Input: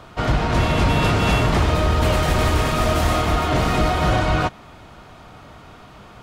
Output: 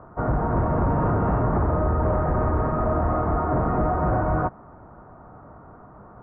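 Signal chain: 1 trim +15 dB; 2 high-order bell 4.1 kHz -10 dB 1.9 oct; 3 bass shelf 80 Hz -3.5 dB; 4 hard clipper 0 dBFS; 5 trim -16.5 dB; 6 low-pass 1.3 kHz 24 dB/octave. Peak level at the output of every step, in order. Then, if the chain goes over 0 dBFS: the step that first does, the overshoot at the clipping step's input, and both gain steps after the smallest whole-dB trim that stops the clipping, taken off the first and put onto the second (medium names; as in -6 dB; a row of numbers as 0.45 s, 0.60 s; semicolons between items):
+7.5 dBFS, +8.0 dBFS, +7.5 dBFS, 0.0 dBFS, -16.5 dBFS, -15.0 dBFS; step 1, 7.5 dB; step 1 +7 dB, step 5 -8.5 dB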